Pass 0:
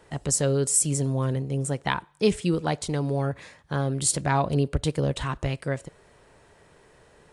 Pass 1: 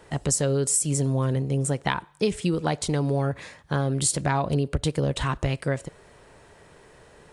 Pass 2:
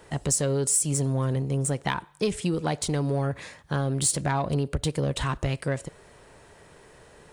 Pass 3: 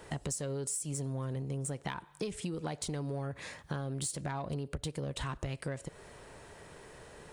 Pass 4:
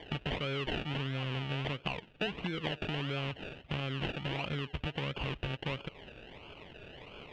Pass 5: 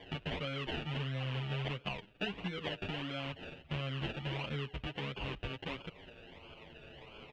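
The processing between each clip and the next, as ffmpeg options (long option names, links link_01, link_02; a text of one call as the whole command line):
ffmpeg -i in.wav -af "acompressor=threshold=-24dB:ratio=6,volume=4dB" out.wav
ffmpeg -i in.wav -filter_complex "[0:a]highshelf=frequency=7900:gain=4.5,asplit=2[link_01][link_02];[link_02]asoftclip=type=tanh:threshold=-24.5dB,volume=-4dB[link_03];[link_01][link_03]amix=inputs=2:normalize=0,volume=-4.5dB" out.wav
ffmpeg -i in.wav -af "acompressor=threshold=-35dB:ratio=6" out.wav
ffmpeg -i in.wav -af "acrusher=samples=33:mix=1:aa=0.000001:lfo=1:lforange=19.8:lforate=1.5,lowpass=frequency=2900:width_type=q:width=5.3" out.wav
ffmpeg -i in.wav -filter_complex "[0:a]asplit=2[link_01][link_02];[link_02]adelay=8.2,afreqshift=-0.34[link_03];[link_01][link_03]amix=inputs=2:normalize=1" out.wav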